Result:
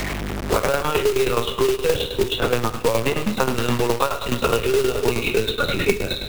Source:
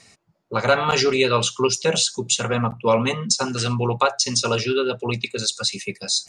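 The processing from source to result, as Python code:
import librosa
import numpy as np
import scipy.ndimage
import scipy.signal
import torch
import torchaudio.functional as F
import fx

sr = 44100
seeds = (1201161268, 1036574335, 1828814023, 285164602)

p1 = fx.spec_trails(x, sr, decay_s=0.4)
p2 = fx.low_shelf(p1, sr, hz=190.0, db=3.0)
p3 = fx.lpc_vocoder(p2, sr, seeds[0], excitation='pitch_kept', order=16)
p4 = fx.dmg_buzz(p3, sr, base_hz=50.0, harmonics=8, level_db=-45.0, tilt_db=-8, odd_only=False)
p5 = fx.rider(p4, sr, range_db=10, speed_s=0.5)
p6 = p5 + fx.echo_feedback(p5, sr, ms=97, feedback_pct=60, wet_db=-13, dry=0)
p7 = fx.dynamic_eq(p6, sr, hz=420.0, q=3.4, threshold_db=-33.0, ratio=4.0, max_db=6)
p8 = fx.tremolo_shape(p7, sr, shape='saw_down', hz=9.5, depth_pct=75)
p9 = fx.quant_companded(p8, sr, bits=4)
y = fx.band_squash(p9, sr, depth_pct=100)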